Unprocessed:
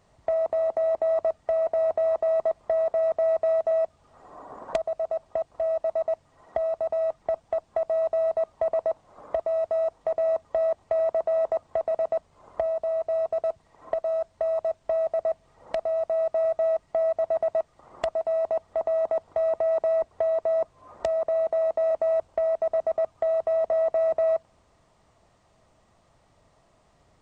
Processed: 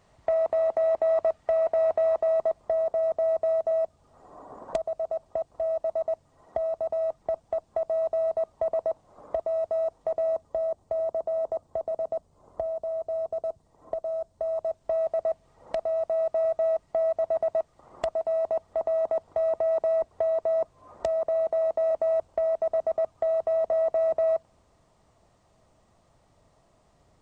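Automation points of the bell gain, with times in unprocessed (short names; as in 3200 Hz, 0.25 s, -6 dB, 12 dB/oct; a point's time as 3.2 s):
bell 2100 Hz 2.2 oct
1.98 s +2 dB
2.84 s -7 dB
10.19 s -7 dB
10.63 s -14.5 dB
14.31 s -14.5 dB
15.03 s -4 dB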